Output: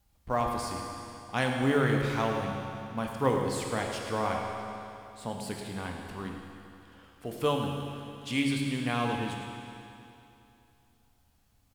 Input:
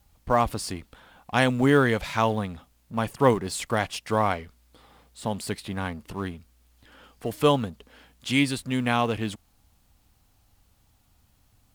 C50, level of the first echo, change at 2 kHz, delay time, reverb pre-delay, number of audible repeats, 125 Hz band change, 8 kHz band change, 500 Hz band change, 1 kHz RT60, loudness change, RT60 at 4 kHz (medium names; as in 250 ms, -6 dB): 1.5 dB, -11.5 dB, -5.5 dB, 108 ms, 14 ms, 1, -4.0 dB, -5.5 dB, -5.5 dB, 2.8 s, -6.0 dB, 2.6 s